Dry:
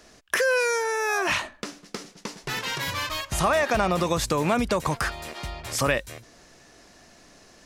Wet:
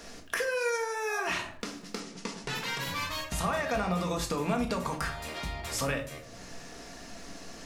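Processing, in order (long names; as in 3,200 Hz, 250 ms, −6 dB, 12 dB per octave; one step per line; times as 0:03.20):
downward compressor 2 to 1, threshold −47 dBFS, peak gain reduction 15.5 dB
convolution reverb RT60 0.50 s, pre-delay 4 ms, DRR 2 dB
surface crackle 220 per second −59 dBFS
0:02.00–0:02.55: low-pass filter 10,000 Hz 24 dB per octave
level +4.5 dB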